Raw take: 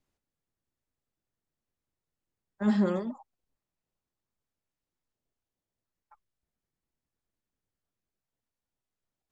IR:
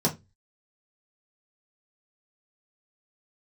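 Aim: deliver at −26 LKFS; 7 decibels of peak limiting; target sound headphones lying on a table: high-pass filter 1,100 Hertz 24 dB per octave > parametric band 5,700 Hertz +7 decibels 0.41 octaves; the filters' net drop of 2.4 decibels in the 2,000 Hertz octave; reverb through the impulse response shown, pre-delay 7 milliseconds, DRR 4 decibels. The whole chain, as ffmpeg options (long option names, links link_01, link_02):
-filter_complex "[0:a]equalizer=frequency=2000:width_type=o:gain=-3,alimiter=limit=-21.5dB:level=0:latency=1,asplit=2[link_01][link_02];[1:a]atrim=start_sample=2205,adelay=7[link_03];[link_02][link_03]afir=irnorm=-1:irlink=0,volume=-14.5dB[link_04];[link_01][link_04]amix=inputs=2:normalize=0,highpass=frequency=1100:width=0.5412,highpass=frequency=1100:width=1.3066,equalizer=frequency=5700:width_type=o:width=0.41:gain=7,volume=21dB"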